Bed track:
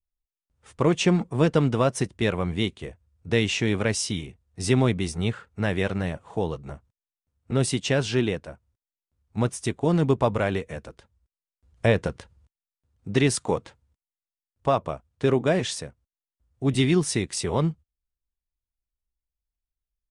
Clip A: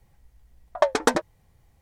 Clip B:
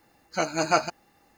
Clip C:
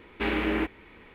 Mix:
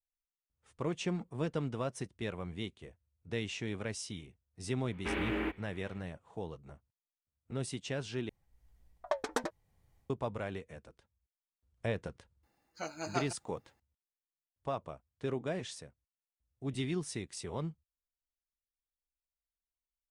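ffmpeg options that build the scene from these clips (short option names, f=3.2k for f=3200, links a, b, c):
-filter_complex "[0:a]volume=-14.5dB[a];[1:a]dynaudnorm=f=190:g=3:m=7.5dB[b];[a]asplit=2[c][d];[c]atrim=end=8.294[e];[b]atrim=end=1.81,asetpts=PTS-STARTPTS,volume=-16dB[f];[d]atrim=start=10.096[g];[3:a]atrim=end=1.14,asetpts=PTS-STARTPTS,volume=-7.5dB,afade=t=in:d=0.004:c=hsin,afade=t=out:st=1.136:d=0.004:c=hsin,adelay=213885S[h];[2:a]atrim=end=1.37,asetpts=PTS-STARTPTS,volume=-14.5dB,afade=t=in:d=0.004:c=hsin,afade=t=out:st=1.366:d=0.004:c=hsin,adelay=12430[i];[e][f]acrossfade=d=0.004:c1=hsin:c2=hsin[j];[j][g]acrossfade=d=0.004:c1=hsin:c2=hsin[k];[k][h][i]amix=inputs=3:normalize=0"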